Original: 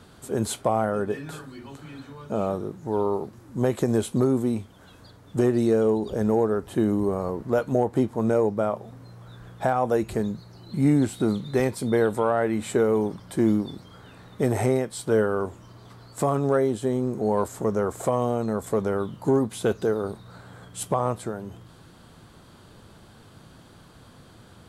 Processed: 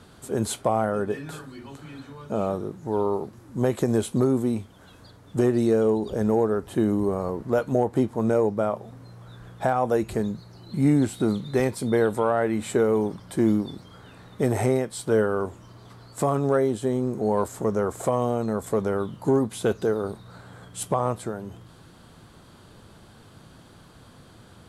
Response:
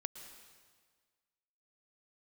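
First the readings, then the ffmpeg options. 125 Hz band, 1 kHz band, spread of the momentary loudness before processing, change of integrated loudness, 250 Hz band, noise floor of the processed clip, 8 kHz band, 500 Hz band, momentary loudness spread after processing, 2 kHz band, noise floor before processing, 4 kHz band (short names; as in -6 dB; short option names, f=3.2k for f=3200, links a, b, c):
0.0 dB, 0.0 dB, 13 LU, 0.0 dB, 0.0 dB, -51 dBFS, +0.5 dB, 0.0 dB, 13 LU, 0.0 dB, -51 dBFS, 0.0 dB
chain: -filter_complex "[1:a]atrim=start_sample=2205,atrim=end_sample=3528,asetrate=24696,aresample=44100[a];[0:a][a]afir=irnorm=-1:irlink=0"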